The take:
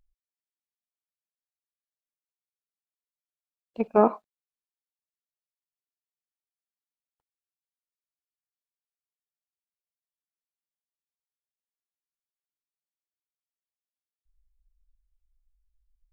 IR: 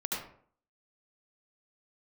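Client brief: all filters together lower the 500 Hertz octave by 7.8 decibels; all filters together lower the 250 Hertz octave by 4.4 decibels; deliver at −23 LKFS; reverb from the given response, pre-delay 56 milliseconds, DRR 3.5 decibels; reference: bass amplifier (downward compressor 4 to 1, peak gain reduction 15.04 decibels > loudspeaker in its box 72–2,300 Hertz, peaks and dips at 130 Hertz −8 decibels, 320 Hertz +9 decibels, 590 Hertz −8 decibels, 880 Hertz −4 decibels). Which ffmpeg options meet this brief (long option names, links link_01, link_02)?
-filter_complex "[0:a]equalizer=frequency=250:width_type=o:gain=-5,equalizer=frequency=500:width_type=o:gain=-6.5,asplit=2[link_01][link_02];[1:a]atrim=start_sample=2205,adelay=56[link_03];[link_02][link_03]afir=irnorm=-1:irlink=0,volume=-8dB[link_04];[link_01][link_04]amix=inputs=2:normalize=0,acompressor=threshold=-36dB:ratio=4,highpass=frequency=72:width=0.5412,highpass=frequency=72:width=1.3066,equalizer=frequency=130:width_type=q:width=4:gain=-8,equalizer=frequency=320:width_type=q:width=4:gain=9,equalizer=frequency=590:width_type=q:width=4:gain=-8,equalizer=frequency=880:width_type=q:width=4:gain=-4,lowpass=frequency=2300:width=0.5412,lowpass=frequency=2300:width=1.3066,volume=18.5dB"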